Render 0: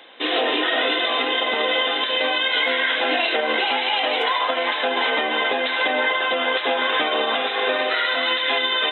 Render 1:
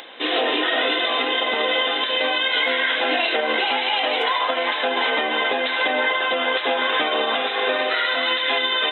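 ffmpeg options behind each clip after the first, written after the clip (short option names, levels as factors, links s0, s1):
-af "acompressor=mode=upward:threshold=0.02:ratio=2.5"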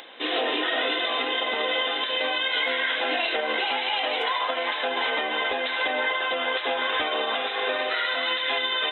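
-af "asubboost=boost=8.5:cutoff=60,volume=0.596"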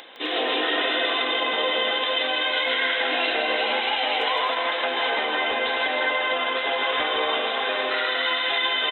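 -af "aecho=1:1:160|256|313.6|348.2|368.9:0.631|0.398|0.251|0.158|0.1"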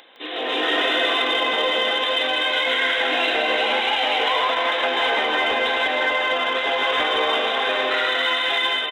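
-filter_complex "[0:a]dynaudnorm=f=350:g=3:m=3.76,asplit=2[s0][s1];[s1]asoftclip=type=hard:threshold=0.158,volume=0.266[s2];[s0][s2]amix=inputs=2:normalize=0,volume=0.422"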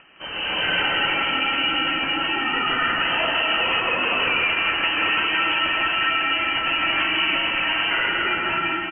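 -af "lowpass=f=2900:t=q:w=0.5098,lowpass=f=2900:t=q:w=0.6013,lowpass=f=2900:t=q:w=0.9,lowpass=f=2900:t=q:w=2.563,afreqshift=-3400"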